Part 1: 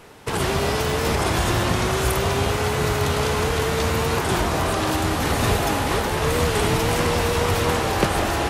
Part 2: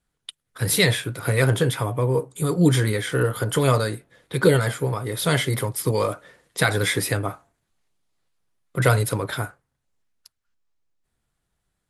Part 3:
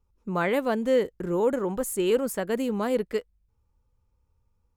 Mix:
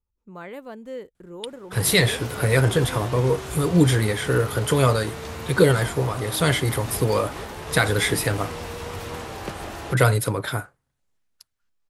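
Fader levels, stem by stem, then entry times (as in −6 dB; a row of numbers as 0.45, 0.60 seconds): −12.5, +0.5, −12.5 decibels; 1.45, 1.15, 0.00 seconds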